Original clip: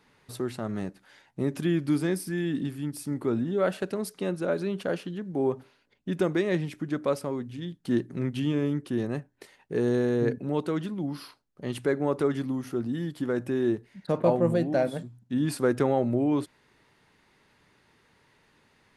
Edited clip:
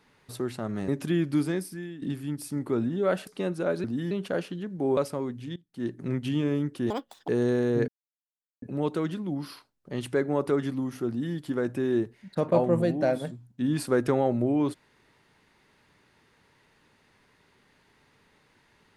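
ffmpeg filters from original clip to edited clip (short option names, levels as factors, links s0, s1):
-filter_complex "[0:a]asplit=11[s0][s1][s2][s3][s4][s5][s6][s7][s8][s9][s10];[s0]atrim=end=0.882[s11];[s1]atrim=start=1.428:end=2.57,asetpts=PTS-STARTPTS,afade=t=out:st=0.512:d=0.63:silence=0.141254[s12];[s2]atrim=start=2.57:end=3.822,asetpts=PTS-STARTPTS,afade=t=in:d=0.004:c=hsin:silence=0.141254[s13];[s3]atrim=start=4.088:end=4.662[s14];[s4]atrim=start=12.798:end=13.072[s15];[s5]atrim=start=4.658:end=5.522[s16];[s6]atrim=start=7.078:end=7.67,asetpts=PTS-STARTPTS,afade=t=out:st=0.588:d=0.004:c=hsin:silence=0.1[s17];[s7]atrim=start=7.67:end=9.014,asetpts=PTS-STARTPTS,afade=t=in:d=0.43:c=qua:silence=0.1[s18];[s8]atrim=start=9.01:end=9.74,asetpts=PTS-STARTPTS,asetrate=84231,aresample=44100[s19];[s9]atrim=start=9.736:end=10.34,asetpts=PTS-STARTPTS,afade=t=out:st=0.6:d=0.004:c=hsin,apad=pad_dur=0.74[s20];[s10]atrim=start=10.34,asetpts=PTS-STARTPTS,afade=t=in:d=0.004:c=hsin[s21];[s12][s13]concat=n=2:v=0:a=1[s22];[s11][s22]acrossfade=d=0.004:c1=hsin:c2=hsin[s23];[s23][s14]acrossfade=d=0.004:c1=hsin:c2=hsin[s24];[s24][s15]acrossfade=d=0.004:c1=hsin:c2=hsin[s25];[s25][s16]acrossfade=d=0.004:c1=hsin:c2=hsin[s26];[s17][s18]concat=n=2:v=0:a=1[s27];[s26][s27]acrossfade=d=0.004:c1=hsin:c2=hsin[s28];[s28][s19]acrossfade=d=0.004:c1=hsin:c2=hsin[s29];[s20][s21]concat=n=2:v=0:a=1[s30];[s29][s30]acrossfade=d=0.004:c1=hsin:c2=hsin"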